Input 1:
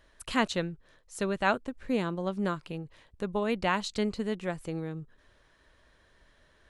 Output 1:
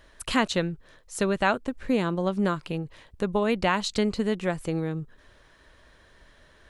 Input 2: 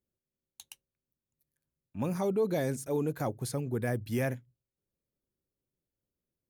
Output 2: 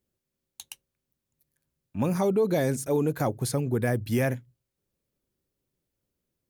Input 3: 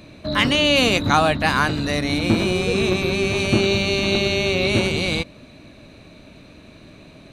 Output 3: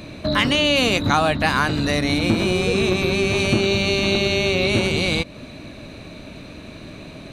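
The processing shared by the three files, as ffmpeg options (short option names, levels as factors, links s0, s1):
-af "acompressor=threshold=0.0398:ratio=2,volume=2.24"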